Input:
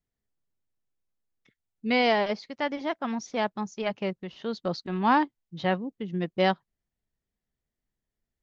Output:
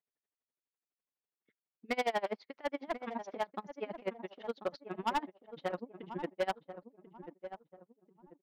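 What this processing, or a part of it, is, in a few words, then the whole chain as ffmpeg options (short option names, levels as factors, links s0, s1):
helicopter radio: -filter_complex "[0:a]highpass=340,lowpass=2600,aeval=exprs='val(0)*pow(10,-32*(0.5-0.5*cos(2*PI*12*n/s))/20)':c=same,asoftclip=type=hard:threshold=0.0447,asplit=2[s0][s1];[s1]adelay=1039,lowpass=f=1000:p=1,volume=0.316,asplit=2[s2][s3];[s3]adelay=1039,lowpass=f=1000:p=1,volume=0.39,asplit=2[s4][s5];[s5]adelay=1039,lowpass=f=1000:p=1,volume=0.39,asplit=2[s6][s7];[s7]adelay=1039,lowpass=f=1000:p=1,volume=0.39[s8];[s0][s2][s4][s6][s8]amix=inputs=5:normalize=0,volume=1.12"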